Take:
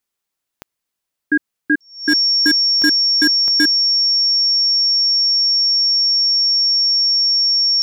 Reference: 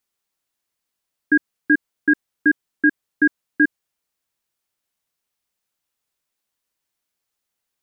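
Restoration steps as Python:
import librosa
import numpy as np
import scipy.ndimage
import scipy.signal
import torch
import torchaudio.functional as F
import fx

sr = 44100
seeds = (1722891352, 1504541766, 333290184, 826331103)

y = fx.fix_declip(x, sr, threshold_db=-7.0)
y = fx.fix_declick_ar(y, sr, threshold=10.0)
y = fx.notch(y, sr, hz=5500.0, q=30.0)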